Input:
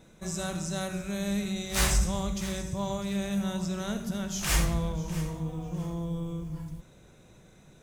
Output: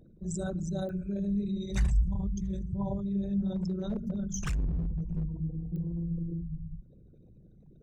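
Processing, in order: resonances exaggerated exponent 3; 3.52–5.24 s: hard clipper -26.5 dBFS, distortion -15 dB; clicks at 0.89/5.76 s, -35 dBFS

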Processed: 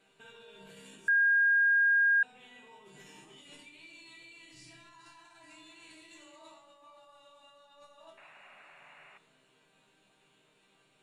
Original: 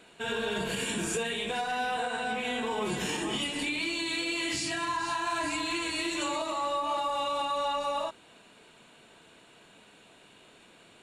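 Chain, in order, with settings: 4.18–4.92 s: bass shelf 120 Hz +10.5 dB; compressor with a negative ratio -37 dBFS, ratio -1; chord resonator C3 minor, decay 0.32 s; 8.17–9.18 s: painted sound noise 540–2900 Hz -54 dBFS; reverberation RT60 1.3 s, pre-delay 7 ms, DRR 12.5 dB; 1.08–2.23 s: bleep 1.62 kHz -19 dBFS; trim -2.5 dB

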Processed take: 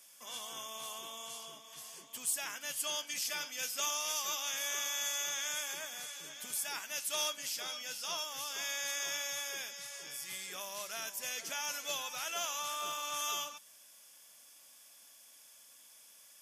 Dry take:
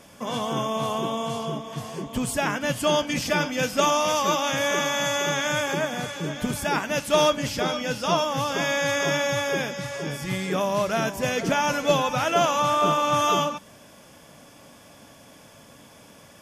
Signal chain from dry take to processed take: differentiator; trim -2.5 dB

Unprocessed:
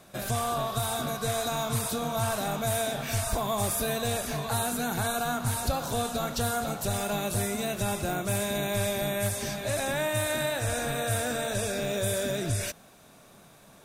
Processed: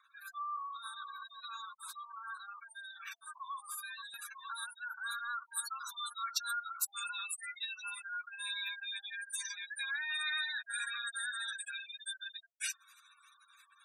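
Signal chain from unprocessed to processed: spectral gate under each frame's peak -15 dB strong; steep high-pass 1.1 kHz 72 dB/octave; treble shelf 2.6 kHz -10 dB, from 4.14 s -2 dB, from 5.52 s +6.5 dB; trim -1.5 dB

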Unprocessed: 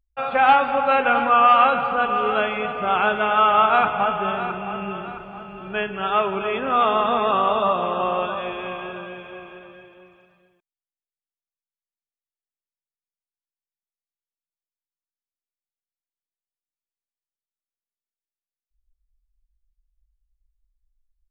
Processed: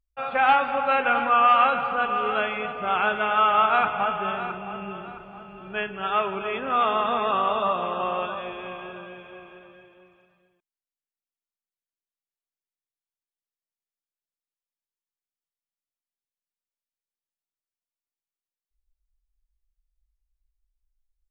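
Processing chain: dynamic bell 2 kHz, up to +4 dB, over -29 dBFS, Q 0.73; trim -5.5 dB

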